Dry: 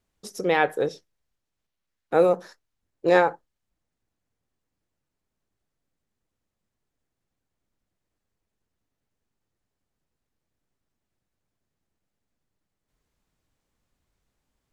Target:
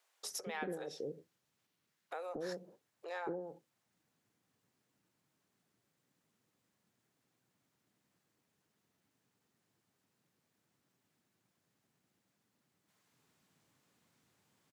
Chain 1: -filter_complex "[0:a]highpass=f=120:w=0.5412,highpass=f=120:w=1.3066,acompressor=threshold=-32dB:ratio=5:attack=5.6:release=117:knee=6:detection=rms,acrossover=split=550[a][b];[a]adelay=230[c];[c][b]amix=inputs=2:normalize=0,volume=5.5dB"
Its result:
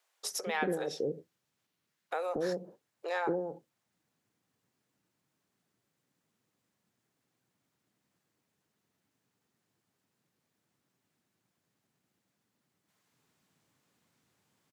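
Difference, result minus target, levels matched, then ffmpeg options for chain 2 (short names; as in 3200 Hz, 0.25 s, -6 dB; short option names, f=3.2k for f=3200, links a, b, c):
compressor: peak gain reduction -9 dB
-filter_complex "[0:a]highpass=f=120:w=0.5412,highpass=f=120:w=1.3066,acompressor=threshold=-43dB:ratio=5:attack=5.6:release=117:knee=6:detection=rms,acrossover=split=550[a][b];[a]adelay=230[c];[c][b]amix=inputs=2:normalize=0,volume=5.5dB"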